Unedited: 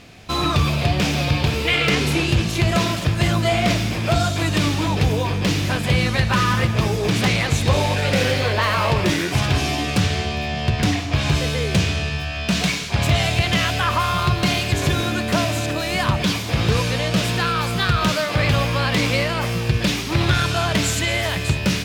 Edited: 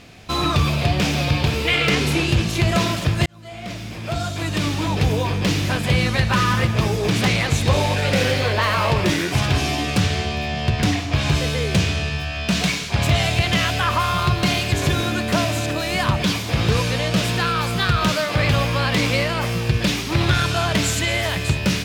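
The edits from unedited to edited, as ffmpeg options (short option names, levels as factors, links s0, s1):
-filter_complex "[0:a]asplit=2[s0][s1];[s0]atrim=end=3.26,asetpts=PTS-STARTPTS,afade=t=out:st=3.256:d=0.004:c=hsin[s2];[s1]atrim=start=3.26,asetpts=PTS-STARTPTS,afade=t=in:d=1.87[s3];[s2][s3]concat=n=2:v=0:a=1"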